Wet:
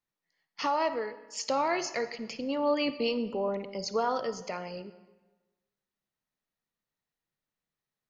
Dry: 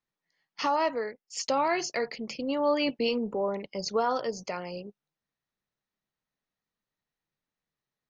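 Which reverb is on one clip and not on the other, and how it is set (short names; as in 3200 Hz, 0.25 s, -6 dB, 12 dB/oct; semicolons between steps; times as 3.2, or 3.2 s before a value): digital reverb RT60 1.2 s, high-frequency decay 0.75×, pre-delay 15 ms, DRR 12.5 dB; gain -2 dB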